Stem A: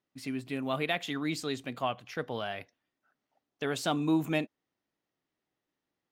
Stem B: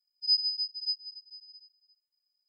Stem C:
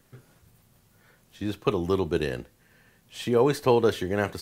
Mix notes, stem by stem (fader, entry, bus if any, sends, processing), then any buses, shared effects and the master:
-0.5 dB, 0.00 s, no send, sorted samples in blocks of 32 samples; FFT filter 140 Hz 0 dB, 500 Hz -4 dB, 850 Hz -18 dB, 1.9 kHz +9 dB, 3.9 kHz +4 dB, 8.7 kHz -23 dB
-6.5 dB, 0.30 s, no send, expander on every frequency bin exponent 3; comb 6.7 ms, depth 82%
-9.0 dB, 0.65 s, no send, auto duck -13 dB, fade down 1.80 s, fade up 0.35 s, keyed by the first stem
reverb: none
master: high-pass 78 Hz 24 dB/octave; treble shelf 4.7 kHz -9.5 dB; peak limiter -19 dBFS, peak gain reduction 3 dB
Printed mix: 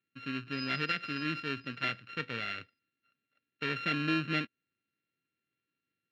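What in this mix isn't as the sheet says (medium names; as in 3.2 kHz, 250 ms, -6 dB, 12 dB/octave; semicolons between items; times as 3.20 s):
stem B: missing expander on every frequency bin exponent 3; stem C: muted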